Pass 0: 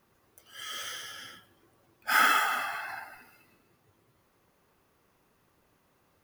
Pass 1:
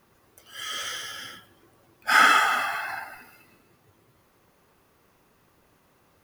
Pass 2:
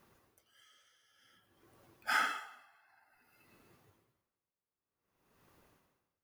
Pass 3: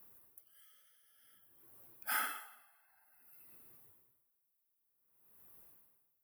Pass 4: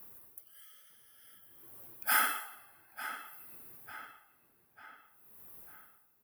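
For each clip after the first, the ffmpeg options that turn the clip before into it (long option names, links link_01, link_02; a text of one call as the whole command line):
ffmpeg -i in.wav -filter_complex "[0:a]acrossover=split=9800[link_01][link_02];[link_02]acompressor=threshold=-51dB:ratio=4:attack=1:release=60[link_03];[link_01][link_03]amix=inputs=2:normalize=0,volume=6dB" out.wav
ffmpeg -i in.wav -af "aeval=exprs='val(0)*pow(10,-33*(0.5-0.5*cos(2*PI*0.54*n/s))/20)':channel_layout=same,volume=-4.5dB" out.wav
ffmpeg -i in.wav -af "aexciter=amount=11.3:drive=4:freq=9400,volume=-6dB" out.wav
ffmpeg -i in.wav -filter_complex "[0:a]asplit=2[link_01][link_02];[link_02]adelay=897,lowpass=frequency=4000:poles=1,volume=-11dB,asplit=2[link_03][link_04];[link_04]adelay=897,lowpass=frequency=4000:poles=1,volume=0.51,asplit=2[link_05][link_06];[link_06]adelay=897,lowpass=frequency=4000:poles=1,volume=0.51,asplit=2[link_07][link_08];[link_08]adelay=897,lowpass=frequency=4000:poles=1,volume=0.51,asplit=2[link_09][link_10];[link_10]adelay=897,lowpass=frequency=4000:poles=1,volume=0.51[link_11];[link_01][link_03][link_05][link_07][link_09][link_11]amix=inputs=6:normalize=0,volume=8dB" out.wav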